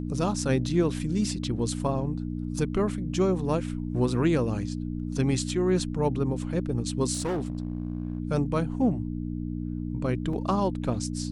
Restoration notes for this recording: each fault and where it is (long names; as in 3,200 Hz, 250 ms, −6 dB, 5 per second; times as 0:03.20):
mains hum 60 Hz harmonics 5 −32 dBFS
0:07.13–0:08.18: clipping −25 dBFS
0:10.33: drop-out 3.8 ms